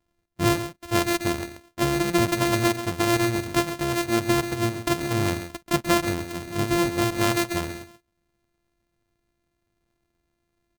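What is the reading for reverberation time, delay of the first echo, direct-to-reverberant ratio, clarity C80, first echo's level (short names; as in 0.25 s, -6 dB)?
none, 0.134 s, none, none, -11.0 dB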